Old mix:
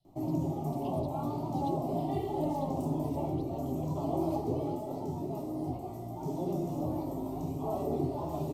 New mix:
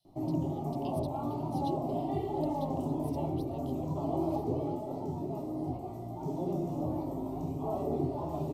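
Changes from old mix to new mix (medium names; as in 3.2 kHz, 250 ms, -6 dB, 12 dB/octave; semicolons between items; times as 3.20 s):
speech: add tilt EQ +3 dB/octave; background: add treble shelf 3.6 kHz -7 dB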